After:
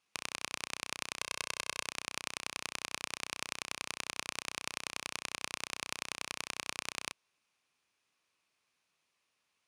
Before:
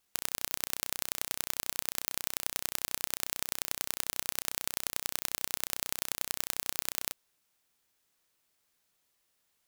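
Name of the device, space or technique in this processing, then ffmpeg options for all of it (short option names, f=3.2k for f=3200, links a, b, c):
car door speaker: -filter_complex "[0:a]asettb=1/sr,asplit=3[a][b][c];[a]atrim=end=1.214[d];[b]atrim=start=1.21:end=1.86,asetpts=PTS-STARTPTS,afade=t=in:d=0.004:c=qsin,afade=t=out:st=0.646:d=0.004:c=qsin,aecho=1:1:1.9:0.74,atrim=end_sample=28665[e];[c]atrim=start=1.856[f];[d][e]acrossfade=d=0.004:c1=hsin:c2=qsin[g];[g][f]acrossfade=d=0.004:c1=qsin:c2=hsin,highpass=85,equalizer=f=1.1k:t=q:w=4:g=6,equalizer=f=2.5k:t=q:w=4:g=8,equalizer=f=7.7k:t=q:w=4:g=-7,lowpass=f=9.2k:w=0.5412,lowpass=f=9.2k:w=1.3066,volume=-2.5dB"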